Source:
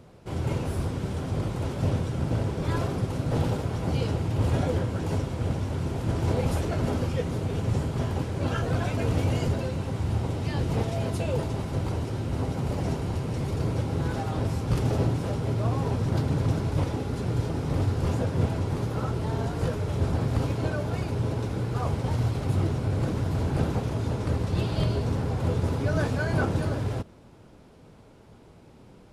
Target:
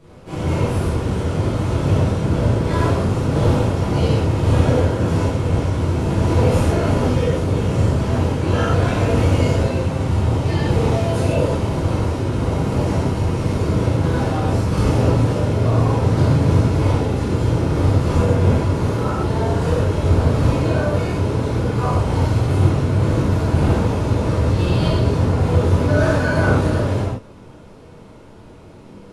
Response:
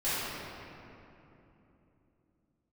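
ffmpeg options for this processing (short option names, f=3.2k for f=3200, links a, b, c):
-filter_complex "[1:a]atrim=start_sample=2205,atrim=end_sample=4410,asetrate=25137,aresample=44100[a];[0:a][a]afir=irnorm=-1:irlink=0,volume=-1dB"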